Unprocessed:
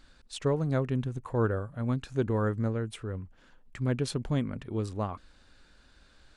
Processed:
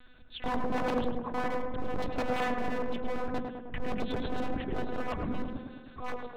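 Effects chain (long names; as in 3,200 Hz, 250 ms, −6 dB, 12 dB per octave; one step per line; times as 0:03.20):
delay that plays each chunk backwards 696 ms, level −4 dB
0:00.83–0:01.45: high-shelf EQ 3,000 Hz −8.5 dB
in parallel at −2 dB: brickwall limiter −25 dBFS, peak gain reduction 11 dB
on the sum: rotating-speaker cabinet horn 0.75 Hz, later 6.3 Hz, at 0:03.73
one-pitch LPC vocoder at 8 kHz 250 Hz
wave folding −26 dBFS
mains-hum notches 50/100/150/200/250 Hz
on a send: tape delay 106 ms, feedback 72%, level −3 dB, low-pass 1,500 Hz
on the sum: level +1.5 dB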